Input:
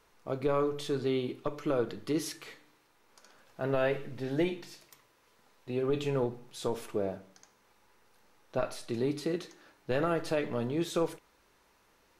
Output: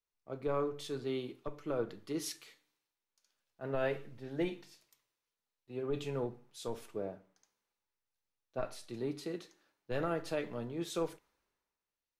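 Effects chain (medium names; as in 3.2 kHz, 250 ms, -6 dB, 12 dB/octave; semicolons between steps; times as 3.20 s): three bands expanded up and down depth 70%; trim -7 dB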